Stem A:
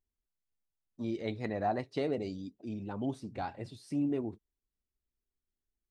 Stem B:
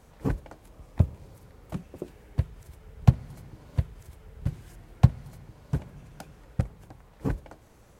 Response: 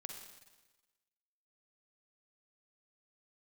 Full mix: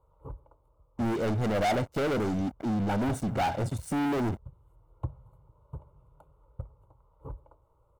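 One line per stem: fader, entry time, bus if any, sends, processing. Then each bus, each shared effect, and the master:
0.0 dB, 0.00 s, no send, flat-topped bell 3,200 Hz −15.5 dB; leveller curve on the samples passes 5
−11.5 dB, 0.00 s, send −12.5 dB, high shelf with overshoot 1,500 Hz −13 dB, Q 3; phaser with its sweep stopped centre 1,100 Hz, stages 8; automatic ducking −7 dB, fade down 0.95 s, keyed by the first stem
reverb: on, RT60 1.2 s, pre-delay 41 ms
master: comb filter 1.4 ms, depth 39%; soft clipping −23 dBFS, distortion −16 dB

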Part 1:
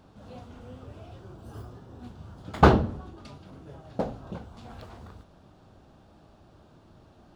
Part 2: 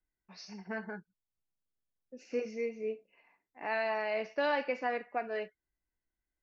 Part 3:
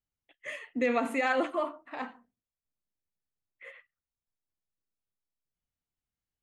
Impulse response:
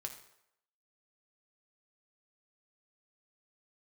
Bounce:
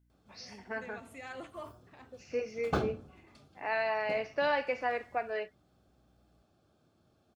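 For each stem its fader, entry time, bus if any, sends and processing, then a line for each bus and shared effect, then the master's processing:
−13.5 dB, 0.10 s, no send, high-shelf EQ 5,000 Hz +9.5 dB; notch comb filter 960 Hz
+1.5 dB, 0.00 s, no send, high-pass filter 320 Hz 12 dB per octave
−13.0 dB, 0.00 s, no send, high-shelf EQ 4,200 Hz +12 dB; mains hum 60 Hz, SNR 20 dB; automatic ducking −9 dB, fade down 0.40 s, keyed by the second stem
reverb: not used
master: no processing

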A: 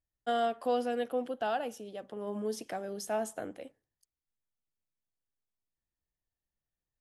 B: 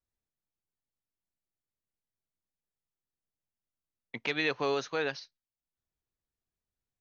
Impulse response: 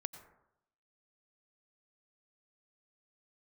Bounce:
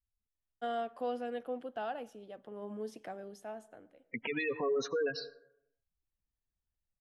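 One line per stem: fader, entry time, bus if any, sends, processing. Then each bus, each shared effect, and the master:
−7.0 dB, 0.35 s, send −15 dB, bass and treble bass 0 dB, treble −9 dB; automatic ducking −19 dB, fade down 0.95 s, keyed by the second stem
+1.0 dB, 0.00 s, send −4.5 dB, gate on every frequency bin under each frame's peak −10 dB strong; comb filter 4.3 ms, depth 32%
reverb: on, RT60 0.80 s, pre-delay 82 ms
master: brickwall limiter −26 dBFS, peak gain reduction 11.5 dB

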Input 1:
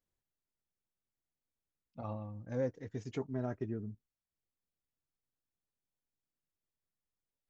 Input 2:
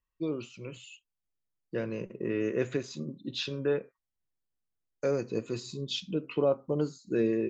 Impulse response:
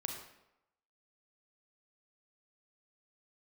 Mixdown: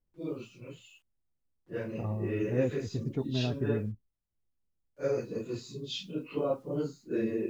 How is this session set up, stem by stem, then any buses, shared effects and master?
−0.5 dB, 0.00 s, no send, spectral tilt −3 dB per octave
−3.0 dB, 0.00 s, no send, random phases in long frames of 100 ms; bit reduction 11 bits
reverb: not used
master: one half of a high-frequency compander decoder only

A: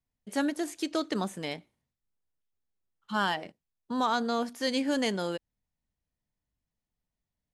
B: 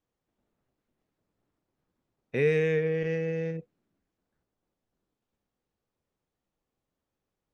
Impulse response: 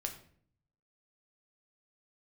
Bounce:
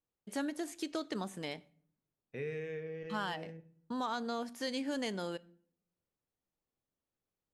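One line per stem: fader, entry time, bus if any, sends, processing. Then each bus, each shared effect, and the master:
−5.5 dB, 0.00 s, send −13.5 dB, downward expander −48 dBFS
−10.0 dB, 0.00 s, send −9.5 dB, automatic ducking −10 dB, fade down 1.15 s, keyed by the first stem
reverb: on, RT60 0.55 s, pre-delay 6 ms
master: downward compressor 2 to 1, threshold −36 dBFS, peak gain reduction 5.5 dB

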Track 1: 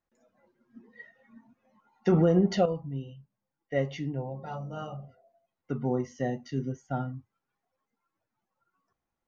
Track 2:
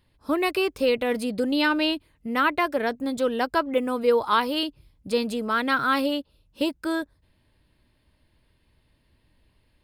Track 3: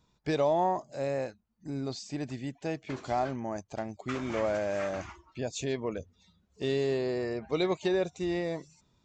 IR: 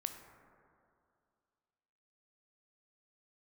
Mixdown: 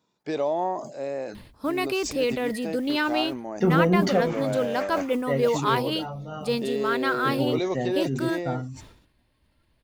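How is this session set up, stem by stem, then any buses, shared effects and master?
+1.5 dB, 1.55 s, no send, no processing
−3.0 dB, 1.35 s, no send, noise that follows the level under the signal 31 dB
−2.0 dB, 0.00 s, no send, high-pass filter 300 Hz 12 dB per octave; low-shelf EQ 500 Hz +7.5 dB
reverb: not used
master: level that may fall only so fast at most 77 dB per second

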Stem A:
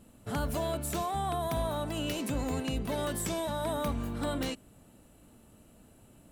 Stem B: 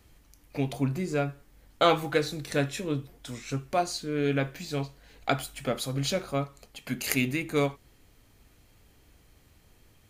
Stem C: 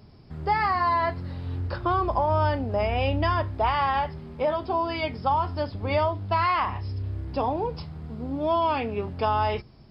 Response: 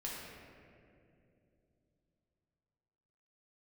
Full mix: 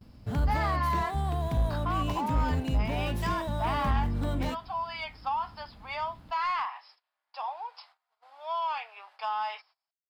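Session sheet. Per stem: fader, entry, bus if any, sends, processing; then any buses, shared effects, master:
−2.0 dB, 0.00 s, no send, running median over 5 samples; parametric band 60 Hz +10 dB 2.2 octaves; notch filter 1,300 Hz
muted
−4.5 dB, 0.00 s, no send, Butterworth high-pass 770 Hz 36 dB per octave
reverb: not used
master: noise gate −57 dBFS, range −23 dB; soft clipping −21.5 dBFS, distortion −19 dB; bass and treble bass +4 dB, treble 0 dB

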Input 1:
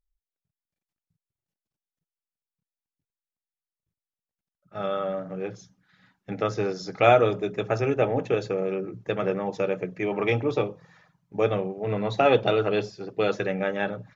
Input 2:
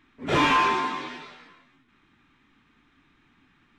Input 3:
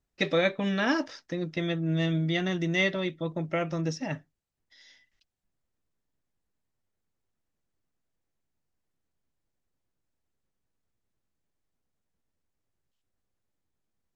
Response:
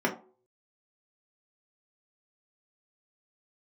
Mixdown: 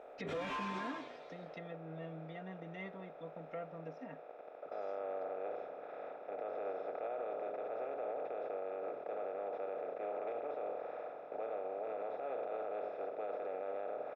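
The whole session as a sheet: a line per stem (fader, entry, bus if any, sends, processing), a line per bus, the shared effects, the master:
−12.0 dB, 0.00 s, no send, compressor on every frequency bin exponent 0.2; four-pole ladder band-pass 690 Hz, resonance 20%
−14.0 dB, 0.00 s, no send, shaped tremolo triangle 1.5 Hz, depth 50%
−1.0 dB, 0.00 s, no send, high-pass filter 250 Hz 6 dB per octave; comb filter 4.3 ms, depth 69%; treble cut that deepens with the level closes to 1,300 Hz, closed at −27.5 dBFS; automatic ducking −15 dB, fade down 0.90 s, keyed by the first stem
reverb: not used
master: brickwall limiter −32 dBFS, peak gain reduction 12 dB

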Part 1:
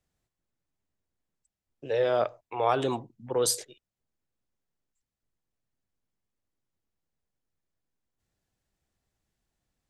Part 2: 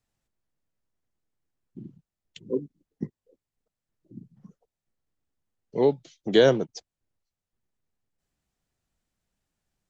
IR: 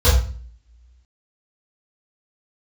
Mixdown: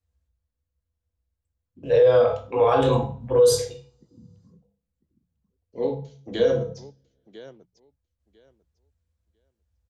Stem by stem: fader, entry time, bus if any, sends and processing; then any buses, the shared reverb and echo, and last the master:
+0.5 dB, 0.00 s, send −16 dB, no echo send, noise gate −52 dBFS, range −22 dB
−9.5 dB, 0.00 s, send −20 dB, echo send −15.5 dB, mains-hum notches 60/120/180 Hz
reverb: on, RT60 0.40 s, pre-delay 3 ms
echo: repeating echo 998 ms, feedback 16%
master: brickwall limiter −9.5 dBFS, peak gain reduction 11.5 dB

